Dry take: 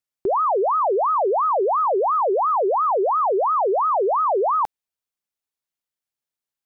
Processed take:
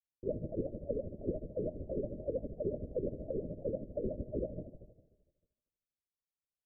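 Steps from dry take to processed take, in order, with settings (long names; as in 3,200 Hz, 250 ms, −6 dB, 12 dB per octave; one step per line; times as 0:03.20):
stylus tracing distortion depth 0.14 ms
notch filter 360 Hz, Q 12
convolution reverb RT60 1.1 s, pre-delay 72 ms, DRR 12.5 dB
brickwall limiter −23.5 dBFS, peak gain reduction 11.5 dB
mains-hum notches 50/100/150/200/250/300/350/400/450 Hz
linear-prediction vocoder at 8 kHz whisper
Chebyshev low-pass filter 620 Hz, order 8
granular cloud 117 ms, grains 13 per second, spray 15 ms, pitch spread up and down by 0 semitones
dynamic equaliser 230 Hz, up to +6 dB, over −45 dBFS, Q 1.2
level −4.5 dB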